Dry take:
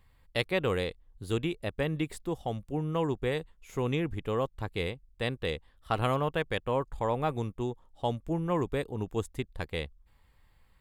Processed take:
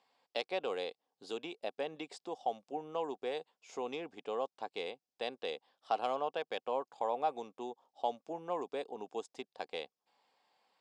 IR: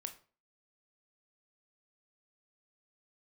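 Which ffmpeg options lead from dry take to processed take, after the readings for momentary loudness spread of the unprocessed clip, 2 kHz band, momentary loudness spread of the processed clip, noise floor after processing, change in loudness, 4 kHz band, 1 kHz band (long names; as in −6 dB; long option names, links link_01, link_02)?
8 LU, −10.0 dB, 9 LU, below −85 dBFS, −7.0 dB, −6.0 dB, −2.0 dB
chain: -af "asoftclip=type=tanh:threshold=-14.5dB,acompressor=threshold=-36dB:ratio=1.5,highpass=frequency=290:width=0.5412,highpass=frequency=290:width=1.3066,equalizer=frequency=330:width_type=q:width=4:gain=-7,equalizer=frequency=750:width_type=q:width=4:gain=9,equalizer=frequency=1300:width_type=q:width=4:gain=-4,equalizer=frequency=1900:width_type=q:width=4:gain=-8,equalizer=frequency=5100:width_type=q:width=4:gain=7,lowpass=frequency=7200:width=0.5412,lowpass=frequency=7200:width=1.3066,volume=-2dB"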